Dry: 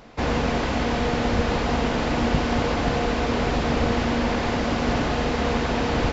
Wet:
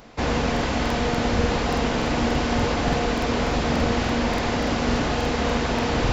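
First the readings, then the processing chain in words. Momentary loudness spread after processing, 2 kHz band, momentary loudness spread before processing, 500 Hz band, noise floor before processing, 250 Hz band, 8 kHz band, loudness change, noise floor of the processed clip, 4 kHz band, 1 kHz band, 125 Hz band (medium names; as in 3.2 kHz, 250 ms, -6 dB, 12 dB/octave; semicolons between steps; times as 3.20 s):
1 LU, +0.5 dB, 1 LU, 0.0 dB, -25 dBFS, 0.0 dB, no reading, +0.5 dB, -25 dBFS, +1.5 dB, 0.0 dB, 0.0 dB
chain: treble shelf 6.5 kHz +7.5 dB; crackling interface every 0.29 s, samples 2048, repeat, from 0.52 s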